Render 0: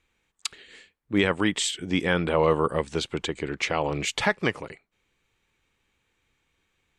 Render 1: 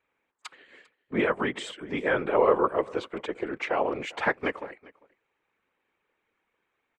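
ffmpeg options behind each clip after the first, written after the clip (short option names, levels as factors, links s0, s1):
-filter_complex "[0:a]acrossover=split=270 2200:gain=0.112 1 0.126[s0][s1][s2];[s0][s1][s2]amix=inputs=3:normalize=0,afftfilt=real='hypot(re,im)*cos(2*PI*random(0))':imag='hypot(re,im)*sin(2*PI*random(1))':win_size=512:overlap=0.75,aecho=1:1:398:0.0708,volume=2.11"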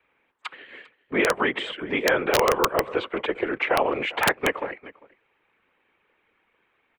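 -filter_complex "[0:a]acrossover=split=150|320|1200|2500[s0][s1][s2][s3][s4];[s0]acompressor=threshold=0.002:ratio=4[s5];[s1]acompressor=threshold=0.00501:ratio=4[s6];[s2]acompressor=threshold=0.0355:ratio=4[s7];[s3]acompressor=threshold=0.0158:ratio=4[s8];[s4]acompressor=threshold=0.00708:ratio=4[s9];[s5][s6][s7][s8][s9]amix=inputs=5:normalize=0,highshelf=f=4300:t=q:w=1.5:g=-11,aeval=exprs='(mod(7.94*val(0)+1,2)-1)/7.94':c=same,volume=2.51"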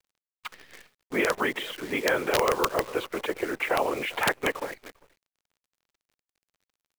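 -af "acrusher=bits=7:dc=4:mix=0:aa=0.000001,volume=0.668"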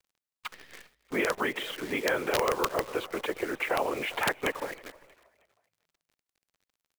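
-filter_complex "[0:a]asplit=2[s0][s1];[s1]acompressor=threshold=0.0251:ratio=6,volume=0.794[s2];[s0][s2]amix=inputs=2:normalize=0,asplit=4[s3][s4][s5][s6];[s4]adelay=316,afreqshift=53,volume=0.0708[s7];[s5]adelay=632,afreqshift=106,volume=0.0275[s8];[s6]adelay=948,afreqshift=159,volume=0.0107[s9];[s3][s7][s8][s9]amix=inputs=4:normalize=0,volume=0.562"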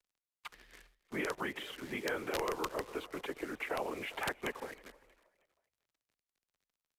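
-af "afreqshift=-41,aresample=32000,aresample=44100,volume=0.376"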